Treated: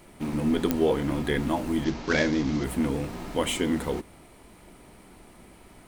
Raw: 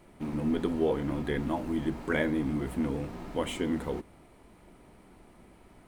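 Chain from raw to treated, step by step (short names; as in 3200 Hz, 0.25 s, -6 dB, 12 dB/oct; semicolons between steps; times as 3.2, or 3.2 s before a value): 1.84–2.64 CVSD 32 kbps; high shelf 2700 Hz +8 dB; pops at 0.71, -13 dBFS; gain +4 dB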